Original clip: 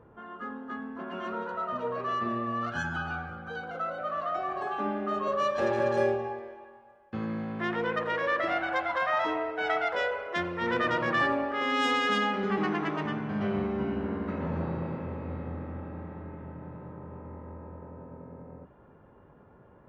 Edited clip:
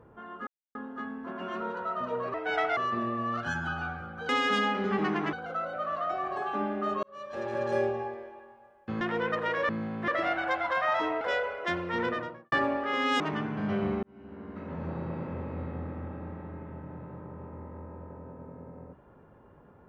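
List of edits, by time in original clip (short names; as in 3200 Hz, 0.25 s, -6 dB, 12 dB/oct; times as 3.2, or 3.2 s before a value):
0.47 insert silence 0.28 s
5.28–6.23 fade in
7.26–7.65 move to 8.33
9.46–9.89 move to 2.06
10.59–11.2 studio fade out
11.88–12.92 move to 3.58
13.75–15.1 fade in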